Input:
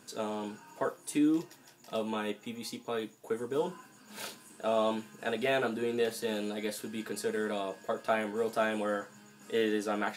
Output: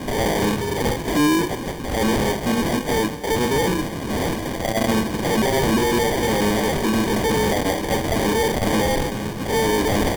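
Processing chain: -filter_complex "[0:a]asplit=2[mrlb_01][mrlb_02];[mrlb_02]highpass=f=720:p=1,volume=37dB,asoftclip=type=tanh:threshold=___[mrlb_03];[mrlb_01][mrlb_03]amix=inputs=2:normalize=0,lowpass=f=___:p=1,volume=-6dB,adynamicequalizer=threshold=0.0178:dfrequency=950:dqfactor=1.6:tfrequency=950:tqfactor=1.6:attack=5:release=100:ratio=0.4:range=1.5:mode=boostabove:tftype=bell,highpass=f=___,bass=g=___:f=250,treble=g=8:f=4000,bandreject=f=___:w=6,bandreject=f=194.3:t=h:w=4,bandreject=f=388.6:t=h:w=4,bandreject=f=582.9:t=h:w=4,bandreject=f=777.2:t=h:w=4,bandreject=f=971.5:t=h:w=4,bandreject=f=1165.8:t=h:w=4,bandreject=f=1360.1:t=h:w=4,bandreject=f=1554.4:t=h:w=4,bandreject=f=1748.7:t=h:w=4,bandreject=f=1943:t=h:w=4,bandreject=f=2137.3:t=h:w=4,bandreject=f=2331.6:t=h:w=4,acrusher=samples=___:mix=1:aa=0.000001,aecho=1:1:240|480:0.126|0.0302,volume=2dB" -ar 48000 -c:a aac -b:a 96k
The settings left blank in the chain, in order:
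-16dB, 3000, 93, 9, 690, 33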